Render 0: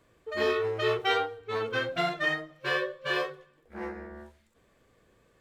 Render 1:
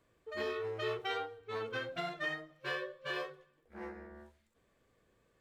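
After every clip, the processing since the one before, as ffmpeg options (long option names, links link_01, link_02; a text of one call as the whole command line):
ffmpeg -i in.wav -af "alimiter=limit=-19dB:level=0:latency=1:release=238,volume=-8dB" out.wav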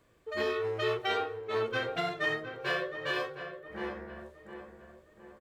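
ffmpeg -i in.wav -filter_complex "[0:a]asplit=2[link_01][link_02];[link_02]adelay=712,lowpass=frequency=1900:poles=1,volume=-9dB,asplit=2[link_03][link_04];[link_04]adelay=712,lowpass=frequency=1900:poles=1,volume=0.48,asplit=2[link_05][link_06];[link_06]adelay=712,lowpass=frequency=1900:poles=1,volume=0.48,asplit=2[link_07][link_08];[link_08]adelay=712,lowpass=frequency=1900:poles=1,volume=0.48,asplit=2[link_09][link_10];[link_10]adelay=712,lowpass=frequency=1900:poles=1,volume=0.48[link_11];[link_01][link_03][link_05][link_07][link_09][link_11]amix=inputs=6:normalize=0,volume=6dB" out.wav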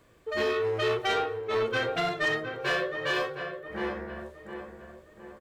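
ffmpeg -i in.wav -af "asoftclip=type=tanh:threshold=-26.5dB,volume=6dB" out.wav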